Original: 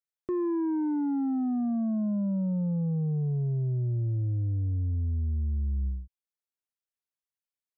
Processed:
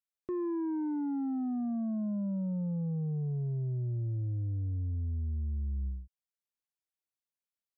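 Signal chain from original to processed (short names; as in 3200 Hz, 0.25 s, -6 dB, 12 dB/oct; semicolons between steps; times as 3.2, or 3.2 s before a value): 3.47–3.97 median filter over 41 samples; gain -5 dB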